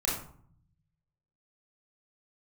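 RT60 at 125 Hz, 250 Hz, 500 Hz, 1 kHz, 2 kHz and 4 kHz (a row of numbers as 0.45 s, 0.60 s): 1.5 s, 1.0 s, 0.55 s, 0.55 s, 0.40 s, 0.30 s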